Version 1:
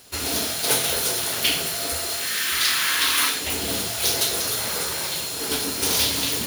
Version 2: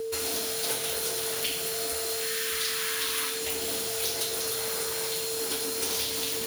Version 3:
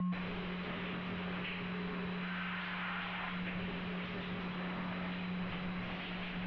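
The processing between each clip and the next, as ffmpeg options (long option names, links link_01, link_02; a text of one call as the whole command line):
ffmpeg -i in.wav -filter_complex "[0:a]aeval=exprs='val(0)+0.0398*sin(2*PI*450*n/s)':channel_layout=same,acrossover=split=280|5300[link_01][link_02][link_03];[link_01]acompressor=threshold=-50dB:ratio=4[link_04];[link_02]acompressor=threshold=-33dB:ratio=4[link_05];[link_03]acompressor=threshold=-31dB:ratio=4[link_06];[link_04][link_05][link_06]amix=inputs=3:normalize=0" out.wav
ffmpeg -i in.wav -af "volume=34.5dB,asoftclip=hard,volume=-34.5dB,highpass=frequency=240:width_type=q:width=0.5412,highpass=frequency=240:width_type=q:width=1.307,lowpass=frequency=3000:width_type=q:width=0.5176,lowpass=frequency=3000:width_type=q:width=0.7071,lowpass=frequency=3000:width_type=q:width=1.932,afreqshift=-270,volume=1.5dB" out.wav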